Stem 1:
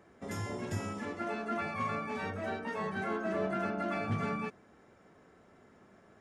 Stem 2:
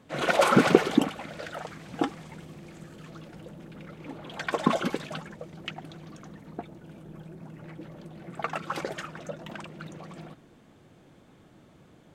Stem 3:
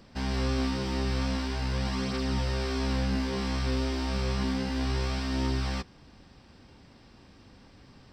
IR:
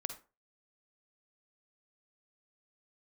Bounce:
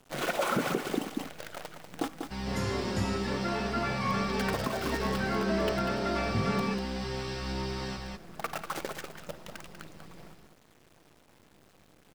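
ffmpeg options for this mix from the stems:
-filter_complex "[0:a]adelay=2250,volume=1.41[s0];[1:a]acrusher=bits=6:dc=4:mix=0:aa=0.000001,volume=0.473,asplit=3[s1][s2][s3];[s2]volume=0.398[s4];[s3]volume=0.531[s5];[2:a]aecho=1:1:5.4:0.86,adelay=2150,volume=0.447,asplit=2[s6][s7];[s7]volume=0.708[s8];[3:a]atrim=start_sample=2205[s9];[s4][s9]afir=irnorm=-1:irlink=0[s10];[s5][s8]amix=inputs=2:normalize=0,aecho=0:1:193:1[s11];[s0][s1][s6][s10][s11]amix=inputs=5:normalize=0,alimiter=limit=0.126:level=0:latency=1:release=280"

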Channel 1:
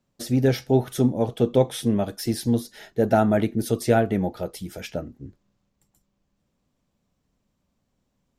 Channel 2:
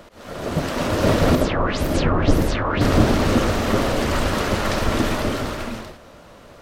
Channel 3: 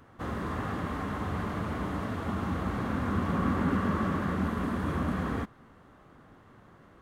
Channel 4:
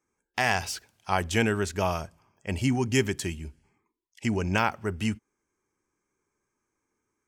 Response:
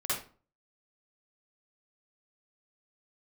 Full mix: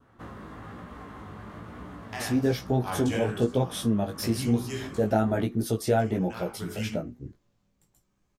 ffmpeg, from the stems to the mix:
-filter_complex "[0:a]adelay=2000,volume=1.41[s0];[2:a]acompressor=threshold=0.0178:ratio=6,volume=0.891[s1];[3:a]tremolo=f=0.77:d=0.74,adelay=1750,volume=0.631,asplit=2[s2][s3];[s3]volume=0.447[s4];[4:a]atrim=start_sample=2205[s5];[s4][s5]afir=irnorm=-1:irlink=0[s6];[s0][s1][s2][s6]amix=inputs=4:normalize=0,adynamicequalizer=threshold=0.00501:dfrequency=2100:dqfactor=2.6:tfrequency=2100:tqfactor=2.6:attack=5:release=100:ratio=0.375:range=2:mode=cutabove:tftype=bell,flanger=delay=16.5:depth=2.6:speed=1.1,acompressor=threshold=0.0398:ratio=1.5"

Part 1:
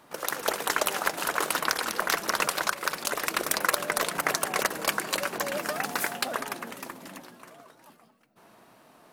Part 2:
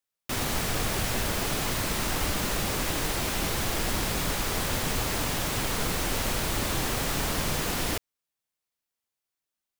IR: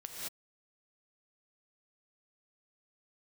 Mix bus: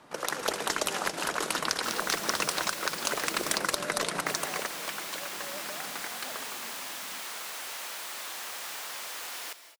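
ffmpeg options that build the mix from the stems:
-filter_complex "[0:a]lowpass=8700,volume=0.944,afade=t=out:st=4.12:d=0.6:silence=0.251189,asplit=2[s0][s1];[s1]volume=0.355[s2];[1:a]highpass=850,adelay=1550,volume=0.355,asplit=3[s3][s4][s5];[s3]atrim=end=3.58,asetpts=PTS-STARTPTS,afade=t=out:st=3.576:d=0.004:c=hsin[s6];[s4]atrim=start=3.58:end=4.26,asetpts=PTS-STARTPTS,volume=0[s7];[s5]atrim=start=4.26,asetpts=PTS-STARTPTS,afade=t=in:d=0.004:c=hsin[s8];[s6][s7][s8]concat=n=3:v=0:a=1,asplit=2[s9][s10];[s10]volume=0.398[s11];[2:a]atrim=start_sample=2205[s12];[s2][s11]amix=inputs=2:normalize=0[s13];[s13][s12]afir=irnorm=-1:irlink=0[s14];[s0][s9][s14]amix=inputs=3:normalize=0,acrossover=split=400|3000[s15][s16][s17];[s16]acompressor=threshold=0.0355:ratio=6[s18];[s15][s18][s17]amix=inputs=3:normalize=0"

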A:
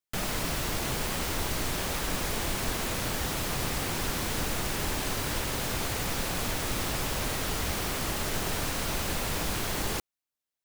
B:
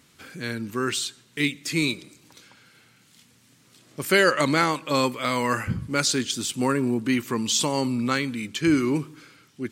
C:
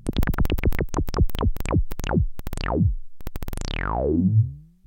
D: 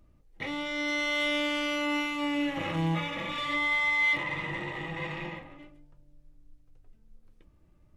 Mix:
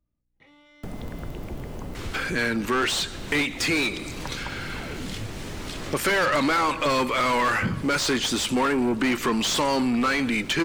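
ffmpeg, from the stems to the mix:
-filter_complex "[0:a]tiltshelf=f=970:g=10,acrossover=split=130|1100[s0][s1][s2];[s0]acompressor=threshold=0.0251:ratio=4[s3];[s1]acompressor=threshold=0.0224:ratio=4[s4];[s2]acompressor=threshold=0.00398:ratio=4[s5];[s3][s4][s5]amix=inputs=3:normalize=0,adelay=700,volume=0.708[s6];[1:a]asplit=2[s7][s8];[s8]highpass=f=720:p=1,volume=28.2,asoftclip=type=tanh:threshold=0.562[s9];[s7][s9]amix=inputs=2:normalize=0,lowpass=f=2300:p=1,volume=0.501,adelay=1950,volume=1.33[s10];[2:a]adelay=850,volume=0.158[s11];[3:a]acompressor=threshold=0.0251:ratio=6,aeval=exprs='val(0)+0.000891*(sin(2*PI*60*n/s)+sin(2*PI*2*60*n/s)/2+sin(2*PI*3*60*n/s)/3+sin(2*PI*4*60*n/s)/4+sin(2*PI*5*60*n/s)/5)':c=same,volume=0.112[s12];[s6][s10][s11][s12]amix=inputs=4:normalize=0,acompressor=threshold=0.0316:ratio=2"

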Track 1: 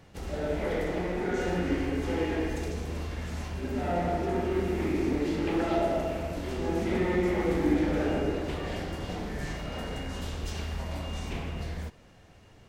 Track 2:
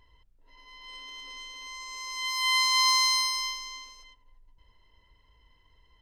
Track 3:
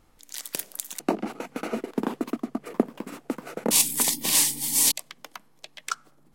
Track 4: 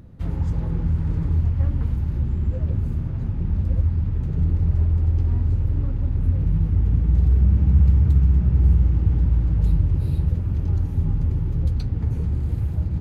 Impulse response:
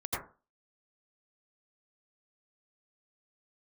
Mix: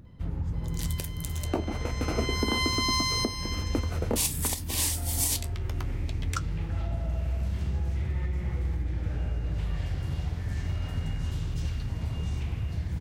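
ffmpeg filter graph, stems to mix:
-filter_complex "[0:a]acompressor=threshold=0.0141:ratio=6,highpass=f=1100:p=1,adelay=1100,volume=1.19[s0];[1:a]adelay=50,volume=0.75[s1];[2:a]highpass=230,lowshelf=f=460:g=7,flanger=delay=8.8:depth=7.2:regen=-61:speed=0.34:shape=sinusoidal,adelay=450,volume=1.12[s2];[3:a]acompressor=threshold=0.0891:ratio=6,volume=0.531[s3];[s0][s1][s2][s3]amix=inputs=4:normalize=0,alimiter=limit=0.178:level=0:latency=1:release=437"

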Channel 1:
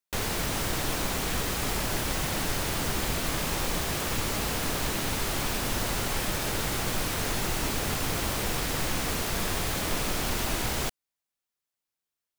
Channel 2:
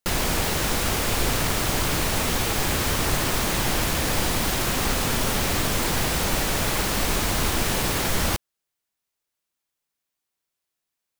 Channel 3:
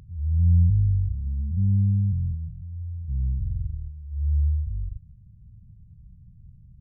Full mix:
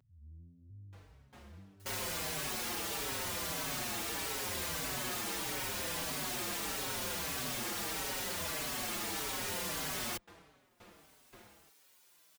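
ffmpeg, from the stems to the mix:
-filter_complex "[0:a]lowpass=f=1900:p=1,aeval=exprs='val(0)*pow(10,-22*if(lt(mod(1.9*n/s,1),2*abs(1.9)/1000),1-mod(1.9*n/s,1)/(2*abs(1.9)/1000),(mod(1.9*n/s,1)-2*abs(1.9)/1000)/(1-2*abs(1.9)/1000))/20)':c=same,adelay=800,volume=0.15[s0];[1:a]acompressor=mode=upward:threshold=0.0224:ratio=2.5,asplit=2[s1][s2];[s2]adelay=7,afreqshift=-0.8[s3];[s1][s3]amix=inputs=2:normalize=1,adelay=1800,volume=0.708[s4];[2:a]acompressor=threshold=0.0562:ratio=6,asoftclip=type=tanh:threshold=0.0708,volume=0.211[s5];[s0][s4][s5]amix=inputs=3:normalize=0,highpass=f=220:p=1,aeval=exprs='0.0316*(abs(mod(val(0)/0.0316+3,4)-2)-1)':c=same,asplit=2[s6][s7];[s7]adelay=4.9,afreqshift=-1.6[s8];[s6][s8]amix=inputs=2:normalize=1"

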